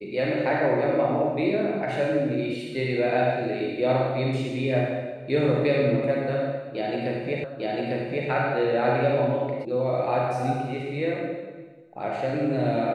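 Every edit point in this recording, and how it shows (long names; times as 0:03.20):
0:07.44: the same again, the last 0.85 s
0:09.65: cut off before it has died away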